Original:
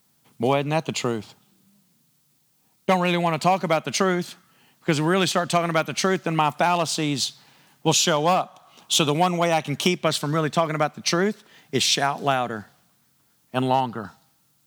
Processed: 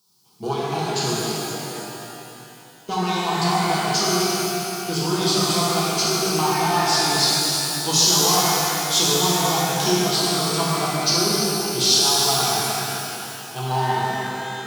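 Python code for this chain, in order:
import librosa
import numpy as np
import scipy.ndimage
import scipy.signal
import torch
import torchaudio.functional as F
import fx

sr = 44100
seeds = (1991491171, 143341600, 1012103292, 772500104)

p1 = fx.diode_clip(x, sr, knee_db=-16.0)
p2 = scipy.signal.sosfilt(scipy.signal.butter(2, 46.0, 'highpass', fs=sr, output='sos'), p1)
p3 = fx.peak_eq(p2, sr, hz=5000.0, db=11.5, octaves=0.76)
p4 = fx.fixed_phaser(p3, sr, hz=380.0, stages=8)
p5 = p4 + fx.echo_alternate(p4, sr, ms=131, hz=1400.0, feedback_pct=71, wet_db=-7.0, dry=0)
p6 = fx.rev_shimmer(p5, sr, seeds[0], rt60_s=2.9, semitones=12, shimmer_db=-8, drr_db=-7.0)
y = p6 * 10.0 ** (-4.5 / 20.0)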